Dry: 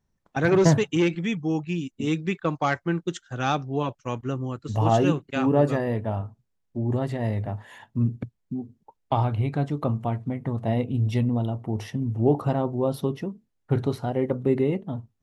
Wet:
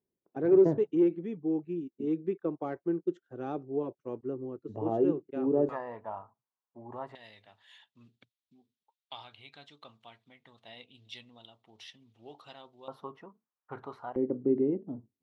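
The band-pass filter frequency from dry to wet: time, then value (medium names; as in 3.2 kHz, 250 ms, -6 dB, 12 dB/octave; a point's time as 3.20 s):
band-pass filter, Q 3
380 Hz
from 5.69 s 1 kHz
from 7.15 s 3.6 kHz
from 12.88 s 1.1 kHz
from 14.16 s 320 Hz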